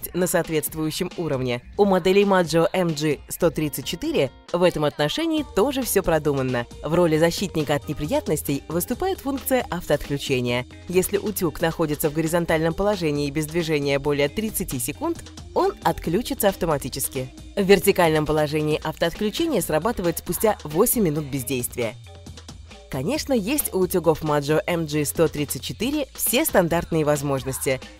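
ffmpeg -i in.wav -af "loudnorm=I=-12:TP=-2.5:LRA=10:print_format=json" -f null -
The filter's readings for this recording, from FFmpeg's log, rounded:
"input_i" : "-22.6",
"input_tp" : "-3.8",
"input_lra" : "2.6",
"input_thresh" : "-32.8",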